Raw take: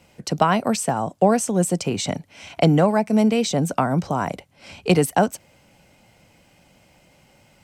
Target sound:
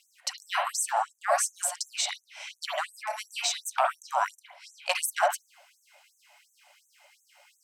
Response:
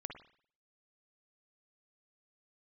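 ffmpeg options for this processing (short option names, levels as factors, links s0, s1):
-filter_complex "[0:a]aeval=exprs='0.668*sin(PI/2*1.58*val(0)/0.668)':c=same[s0];[1:a]atrim=start_sample=2205[s1];[s0][s1]afir=irnorm=-1:irlink=0,afftfilt=real='re*gte(b*sr/1024,530*pow(6100/530,0.5+0.5*sin(2*PI*2.8*pts/sr)))':imag='im*gte(b*sr/1024,530*pow(6100/530,0.5+0.5*sin(2*PI*2.8*pts/sr)))':win_size=1024:overlap=0.75,volume=0.631"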